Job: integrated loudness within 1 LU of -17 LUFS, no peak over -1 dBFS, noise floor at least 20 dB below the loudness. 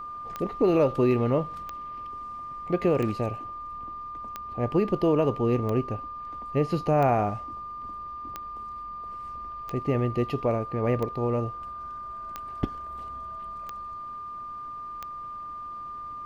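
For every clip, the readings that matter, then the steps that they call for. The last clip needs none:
clicks found 12; steady tone 1.2 kHz; tone level -35 dBFS; loudness -29.0 LUFS; peak level -11.5 dBFS; loudness target -17.0 LUFS
-> de-click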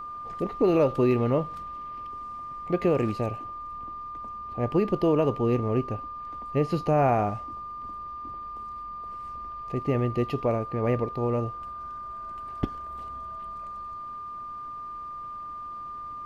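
clicks found 0; steady tone 1.2 kHz; tone level -35 dBFS
-> band-stop 1.2 kHz, Q 30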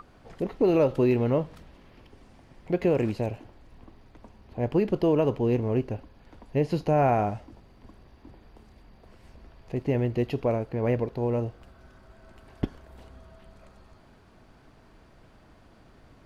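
steady tone not found; loudness -26.5 LUFS; peak level -12.0 dBFS; loudness target -17.0 LUFS
-> trim +9.5 dB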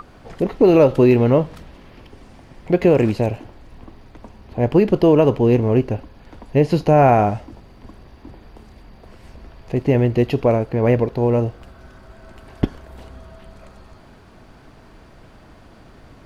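loudness -17.0 LUFS; peak level -2.5 dBFS; noise floor -47 dBFS

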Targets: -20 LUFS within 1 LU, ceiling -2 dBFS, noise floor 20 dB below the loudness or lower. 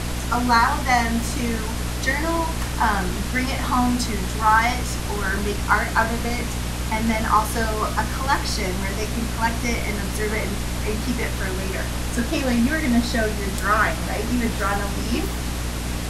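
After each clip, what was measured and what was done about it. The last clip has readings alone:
hum 60 Hz; highest harmonic 300 Hz; hum level -25 dBFS; noise floor -27 dBFS; noise floor target -43 dBFS; loudness -22.5 LUFS; peak level -4.5 dBFS; loudness target -20.0 LUFS
-> hum notches 60/120/180/240/300 Hz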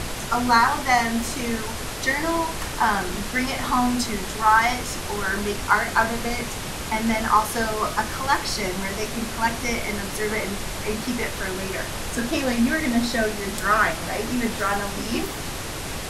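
hum not found; noise floor -31 dBFS; noise floor target -44 dBFS
-> noise print and reduce 13 dB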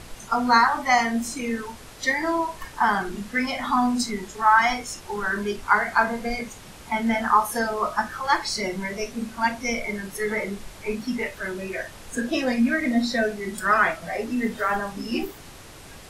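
noise floor -44 dBFS; noise floor target -45 dBFS
-> noise print and reduce 6 dB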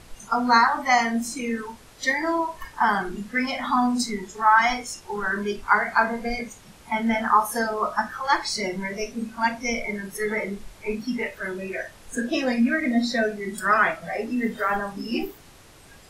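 noise floor -49 dBFS; loudness -24.5 LUFS; peak level -5.5 dBFS; loudness target -20.0 LUFS
-> trim +4.5 dB; peak limiter -2 dBFS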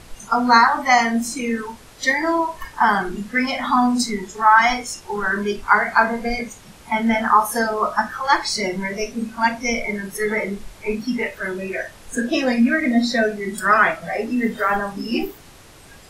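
loudness -20.0 LUFS; peak level -2.0 dBFS; noise floor -45 dBFS

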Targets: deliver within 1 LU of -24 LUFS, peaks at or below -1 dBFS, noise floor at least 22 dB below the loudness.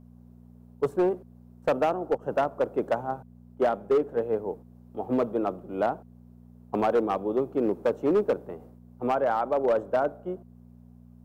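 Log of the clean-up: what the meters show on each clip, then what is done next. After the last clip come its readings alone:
clipped samples 1.4%; clipping level -17.5 dBFS; hum 60 Hz; highest harmonic 240 Hz; hum level -48 dBFS; loudness -27.5 LUFS; peak level -17.5 dBFS; loudness target -24.0 LUFS
-> clip repair -17.5 dBFS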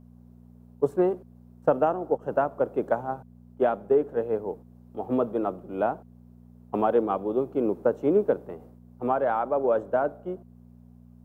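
clipped samples 0.0%; hum 60 Hz; highest harmonic 240 Hz; hum level -48 dBFS
-> de-hum 60 Hz, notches 4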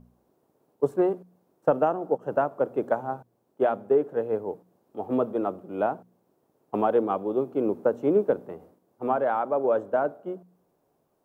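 hum not found; loudness -27.0 LUFS; peak level -9.0 dBFS; loudness target -24.0 LUFS
-> trim +3 dB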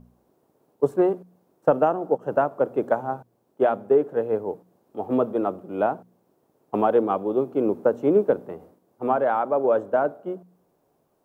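loudness -24.0 LUFS; peak level -6.0 dBFS; noise floor -68 dBFS

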